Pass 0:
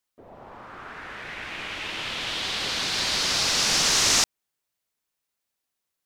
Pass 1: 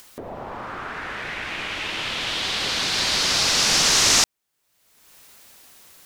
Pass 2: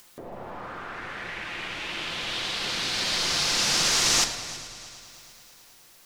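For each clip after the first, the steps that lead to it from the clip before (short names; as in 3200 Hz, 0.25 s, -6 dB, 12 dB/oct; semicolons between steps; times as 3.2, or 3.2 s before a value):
upward compressor, threshold -29 dBFS; gain +3.5 dB
flange 0.76 Hz, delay 4.4 ms, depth 9.5 ms, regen -65%; multi-head echo 0.108 s, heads first and third, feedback 64%, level -18.5 dB; shoebox room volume 1400 m³, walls mixed, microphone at 0.84 m; gain -1.5 dB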